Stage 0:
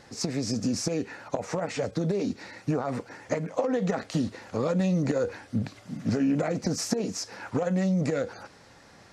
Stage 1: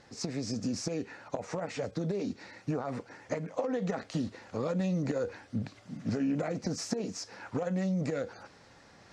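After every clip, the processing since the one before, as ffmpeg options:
ffmpeg -i in.wav -af "lowpass=8100,areverse,acompressor=mode=upward:threshold=-46dB:ratio=2.5,areverse,volume=-5.5dB" out.wav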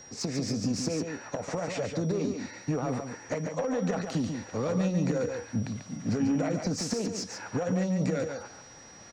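ffmpeg -i in.wav -filter_complex "[0:a]acrossover=split=160[link_01][link_02];[link_02]asoftclip=type=tanh:threshold=-27.5dB[link_03];[link_01][link_03]amix=inputs=2:normalize=0,aeval=exprs='val(0)+0.00251*sin(2*PI*5700*n/s)':channel_layout=same,aecho=1:1:142:0.501,volume=4dB" out.wav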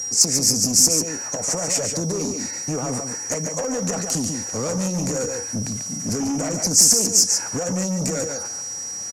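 ffmpeg -i in.wav -af "aeval=exprs='0.133*sin(PI/2*1.78*val(0)/0.133)':channel_layout=same,aexciter=amount=15.3:drive=4.8:freq=5600,aresample=32000,aresample=44100,volume=-3.5dB" out.wav

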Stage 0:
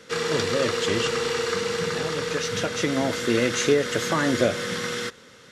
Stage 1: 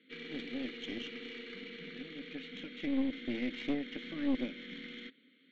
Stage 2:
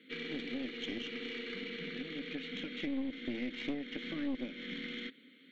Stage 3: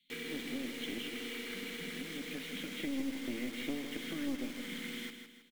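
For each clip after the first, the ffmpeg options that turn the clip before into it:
ffmpeg -i in.wav -filter_complex "[0:a]asplit=3[link_01][link_02][link_03];[link_01]bandpass=frequency=270:width_type=q:width=8,volume=0dB[link_04];[link_02]bandpass=frequency=2290:width_type=q:width=8,volume=-6dB[link_05];[link_03]bandpass=frequency=3010:width_type=q:width=8,volume=-9dB[link_06];[link_04][link_05][link_06]amix=inputs=3:normalize=0,afftfilt=real='re*between(b*sr/4096,140,4500)':imag='im*between(b*sr/4096,140,4500)':win_size=4096:overlap=0.75,aeval=exprs='(tanh(17.8*val(0)+0.65)-tanh(0.65))/17.8':channel_layout=same" out.wav
ffmpeg -i in.wav -af "acompressor=threshold=-44dB:ratio=2.5,volume=6dB" out.wav
ffmpeg -i in.wav -filter_complex "[0:a]acrossover=split=120|3300[link_01][link_02][link_03];[link_02]acrusher=bits=7:mix=0:aa=0.000001[link_04];[link_01][link_04][link_03]amix=inputs=3:normalize=0,aecho=1:1:159|318|477|636|795:0.398|0.167|0.0702|0.0295|0.0124,volume=-1dB" out.wav

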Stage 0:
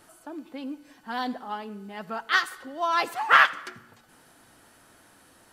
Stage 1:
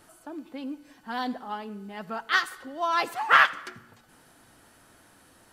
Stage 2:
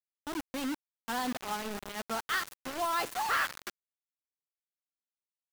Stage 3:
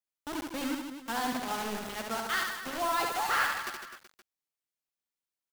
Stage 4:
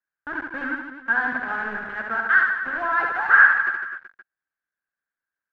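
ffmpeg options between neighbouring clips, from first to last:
ffmpeg -i in.wav -af "lowshelf=frequency=160:gain=4,volume=-1dB" out.wav
ffmpeg -i in.wav -af "acompressor=threshold=-29dB:ratio=2,acrusher=bits=5:mix=0:aa=0.000001,asoftclip=type=tanh:threshold=-23.5dB" out.wav
ffmpeg -i in.wav -af "aecho=1:1:70|154|254.8|375.8|520.9:0.631|0.398|0.251|0.158|0.1" out.wav
ffmpeg -i in.wav -af "lowpass=frequency=1600:width_type=q:width=14" out.wav

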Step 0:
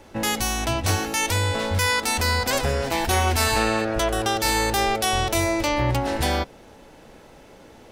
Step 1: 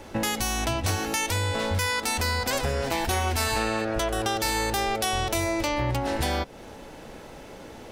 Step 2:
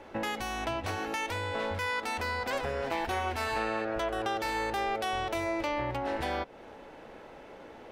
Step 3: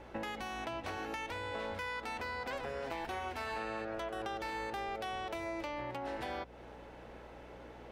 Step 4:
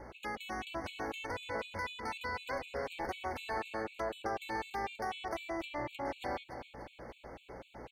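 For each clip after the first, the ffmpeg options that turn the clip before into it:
ffmpeg -i in.wav -af "acompressor=threshold=-30dB:ratio=3,volume=4.5dB" out.wav
ffmpeg -i in.wav -af "bass=frequency=250:gain=-9,treble=frequency=4000:gain=-15,volume=-3.5dB" out.wav
ffmpeg -i in.wav -filter_complex "[0:a]acrossover=split=130|4500[link_01][link_02][link_03];[link_01]acompressor=threshold=-54dB:ratio=4[link_04];[link_02]acompressor=threshold=-33dB:ratio=4[link_05];[link_03]acompressor=threshold=-57dB:ratio=4[link_06];[link_04][link_05][link_06]amix=inputs=3:normalize=0,aeval=exprs='val(0)+0.00224*(sin(2*PI*60*n/s)+sin(2*PI*2*60*n/s)/2+sin(2*PI*3*60*n/s)/3+sin(2*PI*4*60*n/s)/4+sin(2*PI*5*60*n/s)/5)':channel_layout=same,volume=-3.5dB" out.wav
ffmpeg -i in.wav -af "aecho=1:1:290|580|870|1160|1450|1740:0.316|0.168|0.0888|0.0471|0.025|0.0132,afftfilt=real='re*gt(sin(2*PI*4*pts/sr)*(1-2*mod(floor(b*sr/1024/2200),2)),0)':imag='im*gt(sin(2*PI*4*pts/sr)*(1-2*mod(floor(b*sr/1024/2200),2)),0)':win_size=1024:overlap=0.75,volume=3dB" out.wav

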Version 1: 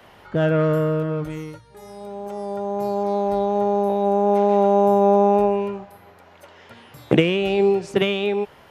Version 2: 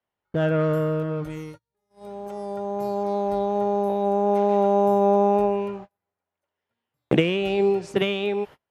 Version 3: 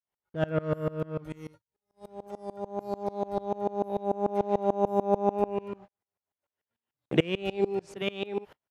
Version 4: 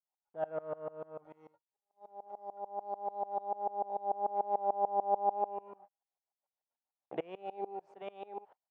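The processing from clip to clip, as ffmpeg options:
ffmpeg -i in.wav -af "agate=range=-35dB:threshold=-35dB:ratio=16:detection=peak,volume=-3dB" out.wav
ffmpeg -i in.wav -af "aeval=exprs='val(0)*pow(10,-25*if(lt(mod(-6.8*n/s,1),2*abs(-6.8)/1000),1-mod(-6.8*n/s,1)/(2*abs(-6.8)/1000),(mod(-6.8*n/s,1)-2*abs(-6.8)/1000)/(1-2*abs(-6.8)/1000))/20)':channel_layout=same" out.wav
ffmpeg -i in.wav -af "bandpass=frequency=780:width_type=q:width=3.7:csg=0" out.wav

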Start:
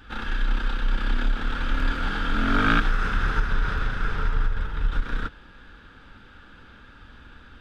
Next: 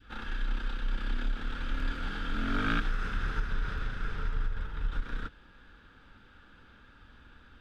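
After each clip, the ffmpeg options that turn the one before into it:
ffmpeg -i in.wav -af "adynamicequalizer=threshold=0.01:dfrequency=920:dqfactor=1:tfrequency=920:tqfactor=1:attack=5:release=100:ratio=0.375:range=2:mode=cutabove:tftype=bell,volume=-8dB" out.wav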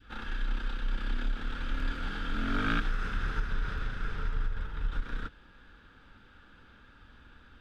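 ffmpeg -i in.wav -af anull out.wav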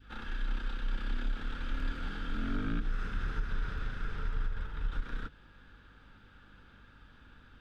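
ffmpeg -i in.wav -filter_complex "[0:a]aeval=exprs='val(0)+0.00112*(sin(2*PI*50*n/s)+sin(2*PI*2*50*n/s)/2+sin(2*PI*3*50*n/s)/3+sin(2*PI*4*50*n/s)/4+sin(2*PI*5*50*n/s)/5)':channel_layout=same,acrossover=split=450[link_01][link_02];[link_02]acompressor=threshold=-40dB:ratio=6[link_03];[link_01][link_03]amix=inputs=2:normalize=0,volume=-2dB" out.wav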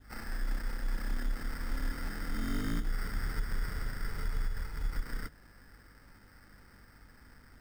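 ffmpeg -i in.wav -af "acrusher=samples=13:mix=1:aa=0.000001" out.wav

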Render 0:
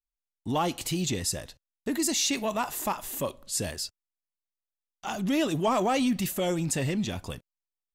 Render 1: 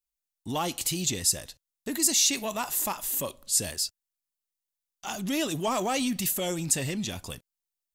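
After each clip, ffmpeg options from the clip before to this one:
ffmpeg -i in.wav -af "highshelf=frequency=3600:gain=11.5,volume=-3.5dB" out.wav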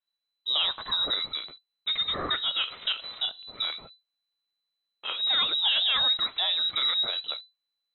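ffmpeg -i in.wav -af "lowshelf=frequency=120:gain=9.5,lowpass=frequency=3400:width_type=q:width=0.5098,lowpass=frequency=3400:width_type=q:width=0.6013,lowpass=frequency=3400:width_type=q:width=0.9,lowpass=frequency=3400:width_type=q:width=2.563,afreqshift=-4000,volume=2.5dB" out.wav

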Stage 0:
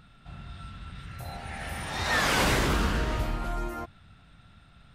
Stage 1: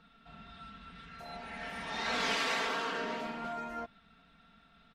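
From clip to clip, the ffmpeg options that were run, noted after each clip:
ffmpeg -i in.wav -filter_complex "[0:a]afftfilt=real='re*lt(hypot(re,im),0.158)':imag='im*lt(hypot(re,im),0.158)':win_size=1024:overlap=0.75,acrossover=split=170 6100:gain=0.251 1 0.126[link_01][link_02][link_03];[link_01][link_02][link_03]amix=inputs=3:normalize=0,aecho=1:1:4.4:0.87,volume=-6dB" out.wav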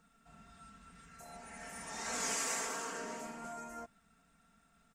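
ffmpeg -i in.wav -af "highshelf=frequency=5300:width_type=q:width=3:gain=13,volume=-6dB" out.wav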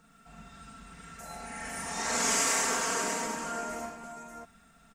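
ffmpeg -i in.wav -af "aecho=1:1:42|105|592:0.708|0.596|0.531,volume=6.5dB" out.wav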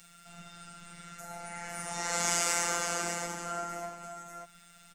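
ffmpeg -i in.wav -filter_complex "[0:a]afftfilt=real='hypot(re,im)*cos(PI*b)':imag='0':win_size=1024:overlap=0.75,acrossover=split=310|1300|1900[link_01][link_02][link_03][link_04];[link_04]acompressor=mode=upward:threshold=-46dB:ratio=2.5[link_05];[link_01][link_02][link_03][link_05]amix=inputs=4:normalize=0,volume=1.5dB" out.wav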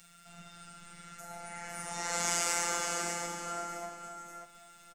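ffmpeg -i in.wav -af "aecho=1:1:519:0.266,volume=-2dB" out.wav

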